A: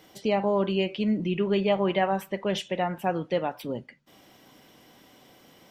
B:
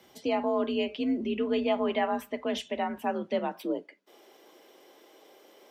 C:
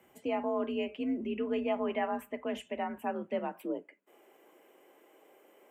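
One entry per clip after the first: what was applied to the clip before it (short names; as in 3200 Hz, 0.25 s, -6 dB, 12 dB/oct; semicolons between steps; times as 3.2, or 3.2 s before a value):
frequency shift +48 Hz; high-pass sweep 60 Hz -> 420 Hz, 2.96–3.84; gain -3.5 dB
band shelf 4500 Hz -15.5 dB 1 oct; gain -4.5 dB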